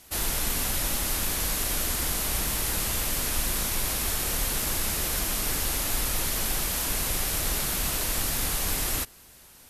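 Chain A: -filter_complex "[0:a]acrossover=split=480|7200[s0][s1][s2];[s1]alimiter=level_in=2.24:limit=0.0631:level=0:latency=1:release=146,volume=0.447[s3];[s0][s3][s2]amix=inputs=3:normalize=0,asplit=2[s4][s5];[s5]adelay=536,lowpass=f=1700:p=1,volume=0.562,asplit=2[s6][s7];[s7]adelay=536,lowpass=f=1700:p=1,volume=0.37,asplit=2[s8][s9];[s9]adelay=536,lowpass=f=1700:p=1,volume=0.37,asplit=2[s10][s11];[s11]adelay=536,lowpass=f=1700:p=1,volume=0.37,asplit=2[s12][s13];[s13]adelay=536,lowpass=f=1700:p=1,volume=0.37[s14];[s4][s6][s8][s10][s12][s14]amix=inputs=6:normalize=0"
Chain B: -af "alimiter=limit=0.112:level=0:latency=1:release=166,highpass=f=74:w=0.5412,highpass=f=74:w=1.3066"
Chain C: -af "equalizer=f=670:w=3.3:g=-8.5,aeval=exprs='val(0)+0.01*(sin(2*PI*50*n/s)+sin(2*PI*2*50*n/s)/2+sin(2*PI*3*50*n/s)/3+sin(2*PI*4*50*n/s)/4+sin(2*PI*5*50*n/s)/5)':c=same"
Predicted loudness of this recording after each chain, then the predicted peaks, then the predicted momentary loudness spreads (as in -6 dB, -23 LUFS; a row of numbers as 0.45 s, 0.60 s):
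-27.5 LUFS, -28.5 LUFS, -26.5 LUFS; -14.0 dBFS, -18.0 dBFS, -13.5 dBFS; 0 LU, 1 LU, 0 LU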